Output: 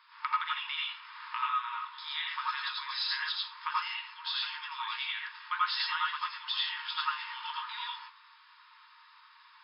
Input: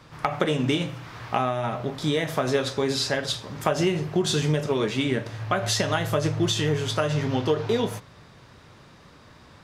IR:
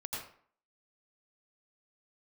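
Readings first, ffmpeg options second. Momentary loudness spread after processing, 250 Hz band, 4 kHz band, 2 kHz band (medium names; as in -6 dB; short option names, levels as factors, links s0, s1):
7 LU, under -40 dB, -3.5 dB, -3.5 dB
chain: -filter_complex "[1:a]atrim=start_sample=2205,afade=t=out:st=0.16:d=0.01,atrim=end_sample=7497[s0];[0:a][s0]afir=irnorm=-1:irlink=0,afftfilt=real='re*between(b*sr/4096,890,5300)':imag='im*between(b*sr/4096,890,5300)':win_size=4096:overlap=0.75,volume=0.75"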